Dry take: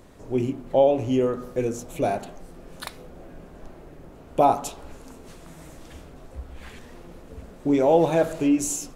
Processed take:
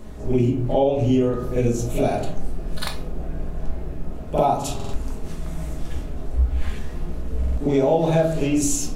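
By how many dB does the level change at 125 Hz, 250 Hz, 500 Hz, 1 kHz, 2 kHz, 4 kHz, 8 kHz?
+10.5 dB, +2.5 dB, +1.0 dB, -0.5 dB, +2.5 dB, +5.5 dB, +4.0 dB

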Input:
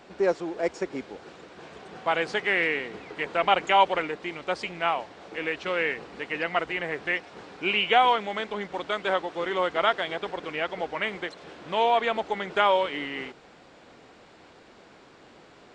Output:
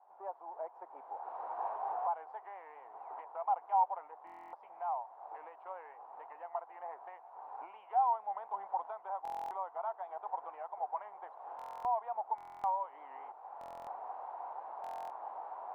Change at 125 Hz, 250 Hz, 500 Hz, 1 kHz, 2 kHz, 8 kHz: under -30 dB, under -30 dB, -17.5 dB, -8.0 dB, -31.0 dB, no reading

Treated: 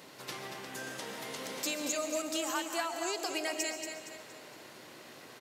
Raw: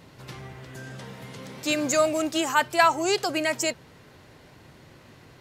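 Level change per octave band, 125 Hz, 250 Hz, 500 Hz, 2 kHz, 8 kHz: -15.5 dB, -10.5 dB, -11.0 dB, -10.5 dB, -5.0 dB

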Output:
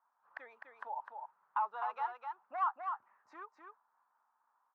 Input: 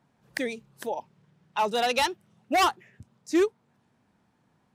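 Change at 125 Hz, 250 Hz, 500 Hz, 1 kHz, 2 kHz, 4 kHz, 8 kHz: under -40 dB, under -35 dB, -24.0 dB, -8.5 dB, -16.5 dB, under -30 dB, under -40 dB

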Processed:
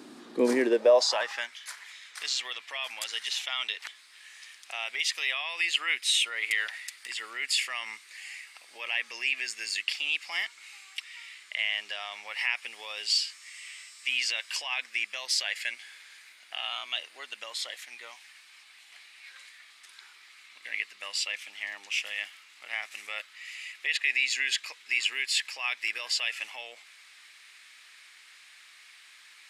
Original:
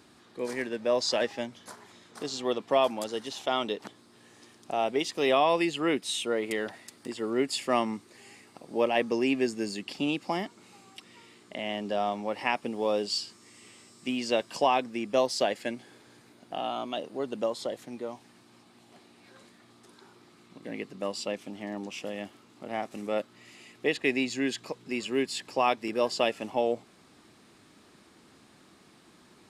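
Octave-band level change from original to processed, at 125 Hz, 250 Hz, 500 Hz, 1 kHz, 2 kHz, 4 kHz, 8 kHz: under -20 dB, no reading, -4.5 dB, -10.0 dB, +6.5 dB, +6.0 dB, +5.5 dB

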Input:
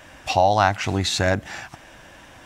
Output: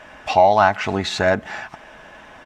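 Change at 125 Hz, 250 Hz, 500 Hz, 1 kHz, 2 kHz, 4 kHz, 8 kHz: -4.5 dB, +1.0 dB, +5.0 dB, +3.5 dB, +3.0 dB, -1.5 dB, -6.0 dB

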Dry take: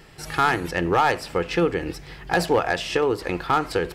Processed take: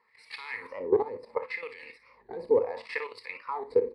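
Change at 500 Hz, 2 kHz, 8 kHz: -4.5 dB, -12.0 dB, under -25 dB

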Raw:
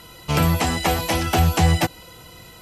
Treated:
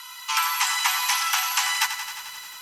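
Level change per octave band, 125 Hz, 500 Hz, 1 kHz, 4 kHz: under -40 dB, under -30 dB, -2.0 dB, +3.5 dB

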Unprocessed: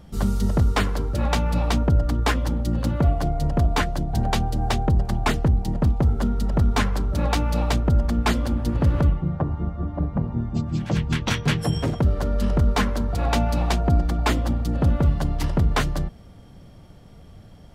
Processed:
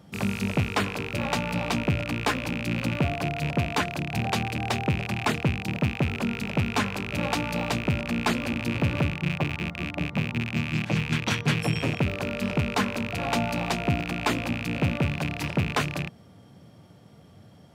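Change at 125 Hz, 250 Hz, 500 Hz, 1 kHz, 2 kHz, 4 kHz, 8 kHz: -6.0 dB, -2.5 dB, -2.5 dB, -2.5 dB, +3.0 dB, 0.0 dB, -2.0 dB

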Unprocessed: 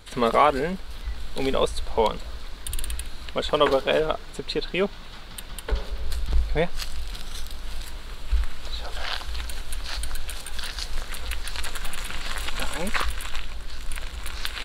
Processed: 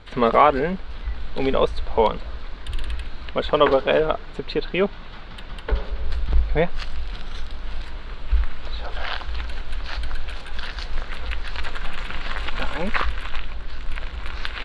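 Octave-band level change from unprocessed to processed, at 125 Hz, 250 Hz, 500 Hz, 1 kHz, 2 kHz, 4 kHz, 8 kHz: +3.5 dB, +3.5 dB, +3.5 dB, +3.5 dB, +2.5 dB, -1.5 dB, under -15 dB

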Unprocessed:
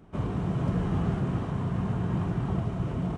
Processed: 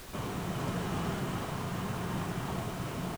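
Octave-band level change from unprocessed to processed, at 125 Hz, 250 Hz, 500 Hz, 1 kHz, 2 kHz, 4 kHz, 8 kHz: -8.5 dB, -7.0 dB, -2.5 dB, +0.5 dB, +3.5 dB, +7.5 dB, no reading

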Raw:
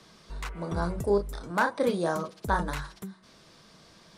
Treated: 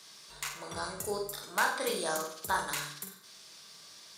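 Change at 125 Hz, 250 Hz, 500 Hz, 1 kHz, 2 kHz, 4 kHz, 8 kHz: -15.0 dB, -12.5 dB, -8.0 dB, -3.5 dB, -0.5 dB, +5.5 dB, +10.0 dB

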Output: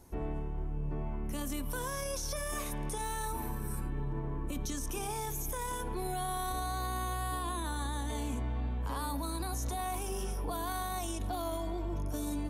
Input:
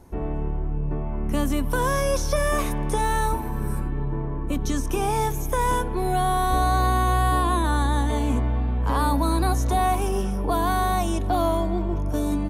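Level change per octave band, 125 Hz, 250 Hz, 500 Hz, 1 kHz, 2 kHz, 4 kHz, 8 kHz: -12.5 dB, -13.0 dB, -14.0 dB, -14.0 dB, -12.5 dB, -9.0 dB, -5.5 dB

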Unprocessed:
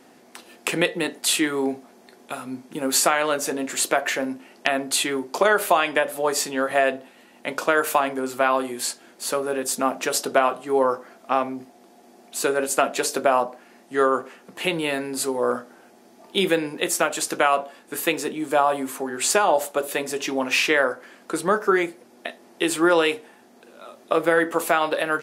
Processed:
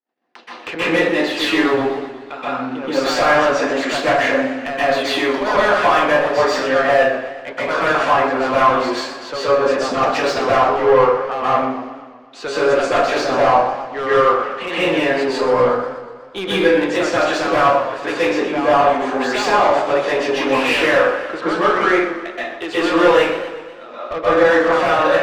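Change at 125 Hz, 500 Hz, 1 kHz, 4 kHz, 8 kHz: +8.0 dB, +7.5 dB, +7.5 dB, +4.0 dB, -9.0 dB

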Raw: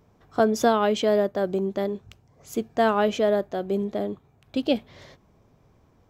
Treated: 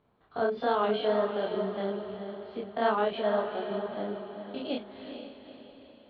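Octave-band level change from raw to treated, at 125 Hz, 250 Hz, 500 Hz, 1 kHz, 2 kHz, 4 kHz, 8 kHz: no reading, -9.0 dB, -5.5 dB, -4.0 dB, -5.0 dB, -5.5 dB, under -40 dB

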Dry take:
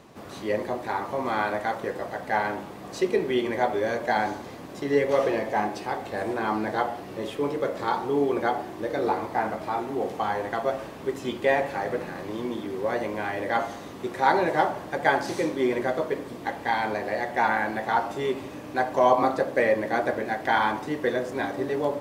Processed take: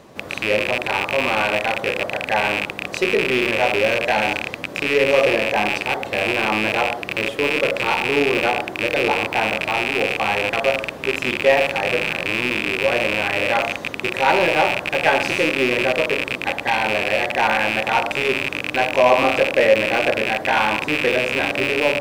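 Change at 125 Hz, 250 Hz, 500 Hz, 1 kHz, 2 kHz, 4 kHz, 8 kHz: +5.5 dB, +3.5 dB, +6.0 dB, +4.0 dB, +12.0 dB, +16.0 dB, +10.5 dB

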